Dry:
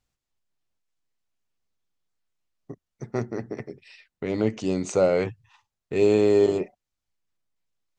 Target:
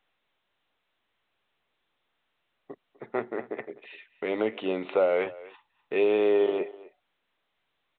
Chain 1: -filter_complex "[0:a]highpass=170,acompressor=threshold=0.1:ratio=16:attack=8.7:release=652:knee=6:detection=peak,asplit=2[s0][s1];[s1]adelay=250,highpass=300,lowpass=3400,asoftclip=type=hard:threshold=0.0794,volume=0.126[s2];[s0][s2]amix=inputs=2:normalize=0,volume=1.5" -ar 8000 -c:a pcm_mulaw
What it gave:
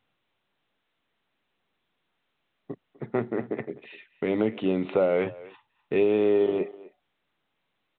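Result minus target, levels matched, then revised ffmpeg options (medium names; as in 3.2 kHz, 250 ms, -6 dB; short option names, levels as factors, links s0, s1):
125 Hz band +11.0 dB
-filter_complex "[0:a]highpass=460,acompressor=threshold=0.1:ratio=16:attack=8.7:release=652:knee=6:detection=peak,asplit=2[s0][s1];[s1]adelay=250,highpass=300,lowpass=3400,asoftclip=type=hard:threshold=0.0794,volume=0.126[s2];[s0][s2]amix=inputs=2:normalize=0,volume=1.5" -ar 8000 -c:a pcm_mulaw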